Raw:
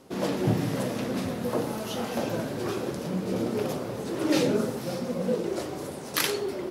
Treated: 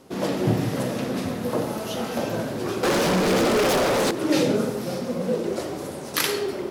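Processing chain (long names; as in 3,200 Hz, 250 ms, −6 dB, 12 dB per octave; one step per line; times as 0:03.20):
on a send at −8.5 dB: convolution reverb RT60 0.95 s, pre-delay 25 ms
0:02.83–0:04.11: on the sum: mid-hump overdrive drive 29 dB, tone 7,200 Hz, clips at −16 dBFS
level +2.5 dB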